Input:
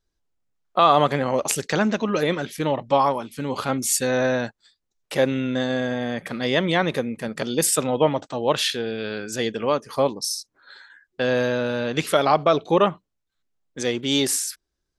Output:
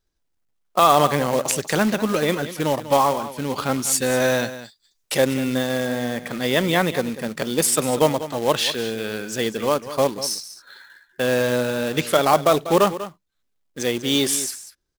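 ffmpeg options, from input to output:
ffmpeg -i in.wav -filter_complex "[0:a]asettb=1/sr,asplit=3[link_01][link_02][link_03];[link_01]atrim=end=4.204[link_04];[link_02]atrim=start=4.2:end=5.18,asetpts=PTS-STARTPTS,afade=type=in:duration=0.004:curve=qsin,afade=type=out:start_time=0.976:duration=0.004:curve=qsin,highshelf=frequency=3700:gain=12[link_05];[link_03]atrim=start=5.176[link_06];[link_04][link_05]acrossfade=duration=0.004:curve1=hsin:curve2=qsin[link_07];[link_07][link_06]acrossfade=duration=0.004:curve1=qsin:curve2=hsin,acrusher=bits=3:mode=log:mix=0:aa=0.000001,aecho=1:1:194:0.211,volume=1dB" out.wav

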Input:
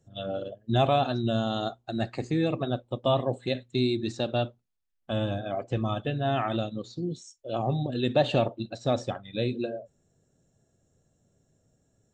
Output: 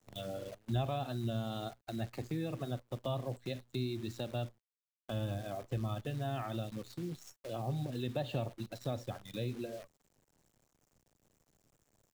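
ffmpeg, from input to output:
ffmpeg -i in.wav -filter_complex "[0:a]acrusher=bits=8:dc=4:mix=0:aa=0.000001,acrossover=split=120[link_01][link_02];[link_02]acompressor=threshold=-41dB:ratio=2[link_03];[link_01][link_03]amix=inputs=2:normalize=0,volume=-3dB" out.wav

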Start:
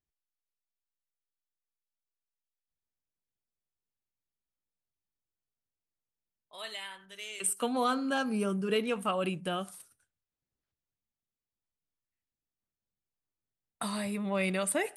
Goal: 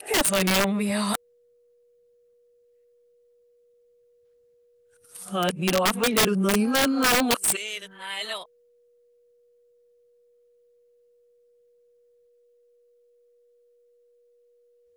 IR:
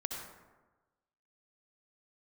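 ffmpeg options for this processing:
-af "areverse,aeval=exprs='val(0)+0.000398*sin(2*PI*480*n/s)':channel_layout=same,aeval=exprs='(mod(14.1*val(0)+1,2)-1)/14.1':channel_layout=same,volume=9dB"

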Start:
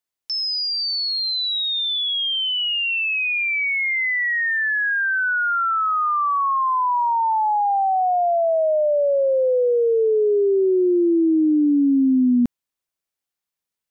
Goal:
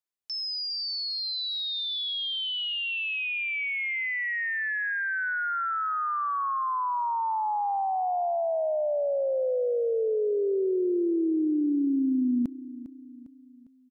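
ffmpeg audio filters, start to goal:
ffmpeg -i in.wav -af "aecho=1:1:403|806|1209|1612:0.158|0.0777|0.0381|0.0186,volume=-8.5dB" out.wav

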